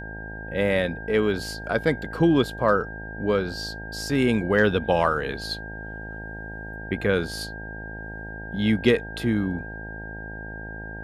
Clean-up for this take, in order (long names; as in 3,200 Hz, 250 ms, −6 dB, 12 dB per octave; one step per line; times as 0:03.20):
hum removal 53.7 Hz, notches 17
notch filter 1,600 Hz, Q 30